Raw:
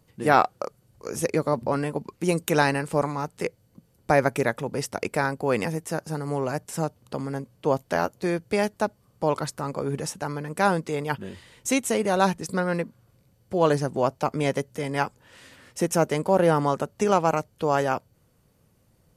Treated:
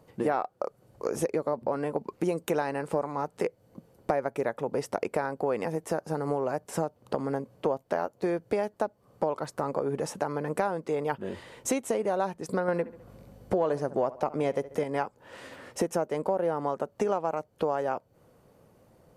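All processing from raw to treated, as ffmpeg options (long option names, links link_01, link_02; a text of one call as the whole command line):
ffmpeg -i in.wav -filter_complex "[0:a]asettb=1/sr,asplit=3[link_01][link_02][link_03];[link_01]atrim=end=12.684[link_04];[link_02]atrim=start=12.68:end=14.84,asetpts=PTS-STARTPTS,afade=type=in:duration=0.004:curve=qsin,afade=type=out:start_time=2.156:duration=0.004:curve=qsin,acontrast=53,aeval=exprs='val(0)+0.00251*(sin(2*PI*50*n/s)+sin(2*PI*2*50*n/s)/2+sin(2*PI*3*50*n/s)/3+sin(2*PI*4*50*n/s)/4+sin(2*PI*5*50*n/s)/5)':channel_layout=same,asplit=2[link_05][link_06];[link_06]adelay=69,lowpass=frequency=3800:poles=1,volume=-19dB,asplit=2[link_07][link_08];[link_08]adelay=69,lowpass=frequency=3800:poles=1,volume=0.37,asplit=2[link_09][link_10];[link_10]adelay=69,lowpass=frequency=3800:poles=1,volume=0.37[link_11];[link_05][link_07][link_09][link_11]amix=inputs=4:normalize=0,atrim=end_sample=95256[link_12];[link_03]atrim=start=14.836[link_13];[link_04][link_12]acrossfade=duration=0.004:curve1=hsin:curve2=qsin[link_14];[link_14][link_13]acrossfade=duration=0.004:curve1=qsin:curve2=hsin,equalizer=frequency=600:width=0.41:gain=13.5,acompressor=threshold=-23dB:ratio=6,volume=-3dB" out.wav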